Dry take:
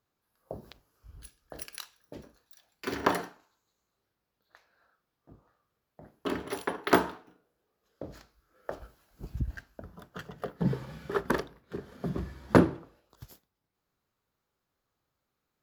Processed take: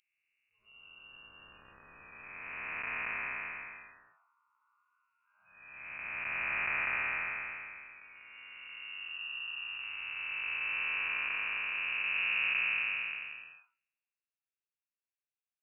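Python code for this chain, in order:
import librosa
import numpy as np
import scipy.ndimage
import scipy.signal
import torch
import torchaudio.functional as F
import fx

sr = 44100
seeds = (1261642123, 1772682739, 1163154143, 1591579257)

y = fx.spec_blur(x, sr, span_ms=968.0)
y = fx.freq_invert(y, sr, carrier_hz=2800)
y = fx.noise_reduce_blind(y, sr, reduce_db=26)
y = F.gain(torch.from_numpy(y), 5.0).numpy()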